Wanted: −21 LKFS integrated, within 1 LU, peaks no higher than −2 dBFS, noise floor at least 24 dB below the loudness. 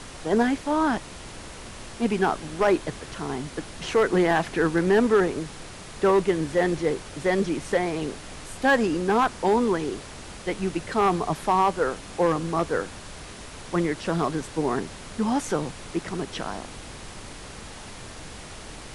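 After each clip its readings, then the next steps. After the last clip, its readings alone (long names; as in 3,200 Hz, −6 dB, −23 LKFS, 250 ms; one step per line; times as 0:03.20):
share of clipped samples 0.4%; peaks flattened at −13.0 dBFS; background noise floor −41 dBFS; target noise floor −49 dBFS; integrated loudness −25.0 LKFS; sample peak −13.0 dBFS; target loudness −21.0 LKFS
→ clipped peaks rebuilt −13 dBFS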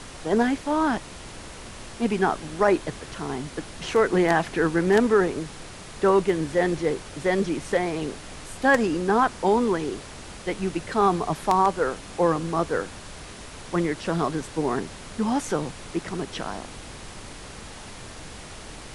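share of clipped samples 0.0%; background noise floor −41 dBFS; target noise floor −49 dBFS
→ noise reduction from a noise print 8 dB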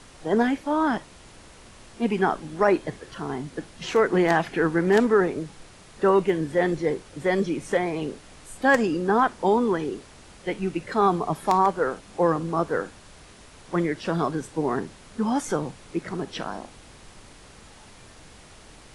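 background noise floor −49 dBFS; integrated loudness −24.5 LKFS; sample peak −4.0 dBFS; target loudness −21.0 LKFS
→ level +3.5 dB
brickwall limiter −2 dBFS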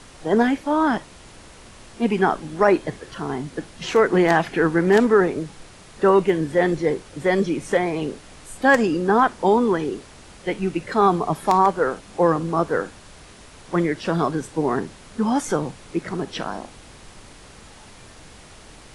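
integrated loudness −21.0 LKFS; sample peak −2.0 dBFS; background noise floor −45 dBFS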